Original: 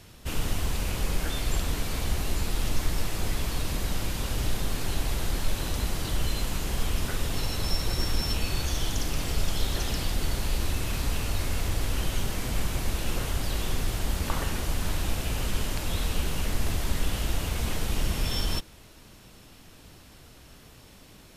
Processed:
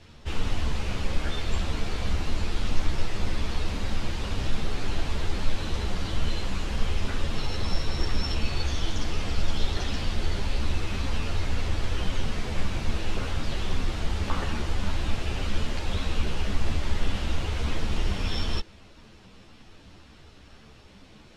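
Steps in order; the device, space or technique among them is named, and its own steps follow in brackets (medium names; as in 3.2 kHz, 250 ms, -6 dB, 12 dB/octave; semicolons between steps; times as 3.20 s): string-machine ensemble chorus (three-phase chorus; low-pass 4.8 kHz 12 dB/octave); trim +3.5 dB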